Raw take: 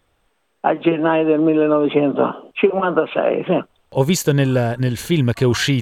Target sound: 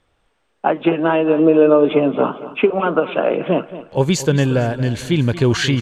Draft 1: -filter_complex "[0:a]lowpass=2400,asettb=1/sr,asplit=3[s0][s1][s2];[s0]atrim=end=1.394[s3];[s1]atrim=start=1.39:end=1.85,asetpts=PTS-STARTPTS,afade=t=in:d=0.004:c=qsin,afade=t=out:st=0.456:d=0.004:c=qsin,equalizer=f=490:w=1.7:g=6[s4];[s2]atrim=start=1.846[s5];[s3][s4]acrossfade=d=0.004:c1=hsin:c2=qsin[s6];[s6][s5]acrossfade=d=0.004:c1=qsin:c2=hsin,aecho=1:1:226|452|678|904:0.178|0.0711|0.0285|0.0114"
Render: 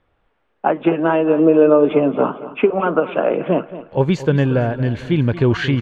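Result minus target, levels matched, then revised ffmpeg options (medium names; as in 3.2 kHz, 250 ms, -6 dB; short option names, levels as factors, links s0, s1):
8 kHz band -17.5 dB
-filter_complex "[0:a]lowpass=8200,asettb=1/sr,asplit=3[s0][s1][s2];[s0]atrim=end=1.394[s3];[s1]atrim=start=1.39:end=1.85,asetpts=PTS-STARTPTS,afade=t=in:d=0.004:c=qsin,afade=t=out:st=0.456:d=0.004:c=qsin,equalizer=f=490:w=1.7:g=6[s4];[s2]atrim=start=1.846[s5];[s3][s4]acrossfade=d=0.004:c1=hsin:c2=qsin[s6];[s6][s5]acrossfade=d=0.004:c1=qsin:c2=hsin,aecho=1:1:226|452|678|904:0.178|0.0711|0.0285|0.0114"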